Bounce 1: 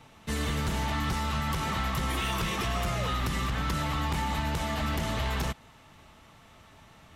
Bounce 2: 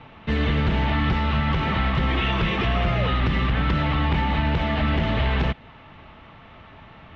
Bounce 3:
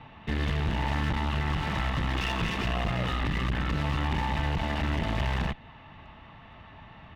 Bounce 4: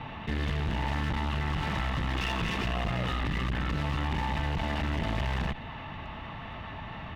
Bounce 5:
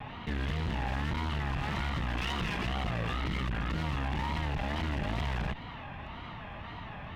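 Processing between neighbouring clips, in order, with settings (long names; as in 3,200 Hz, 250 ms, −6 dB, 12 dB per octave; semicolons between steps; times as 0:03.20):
low-pass filter 3,200 Hz 24 dB per octave; dynamic equaliser 1,100 Hz, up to −5 dB, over −49 dBFS, Q 1.4; level +9 dB
comb filter 1.1 ms, depth 33%; asymmetric clip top −34 dBFS; level −4 dB
envelope flattener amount 50%; level −3 dB
tape wow and flutter 150 cents; level −2.5 dB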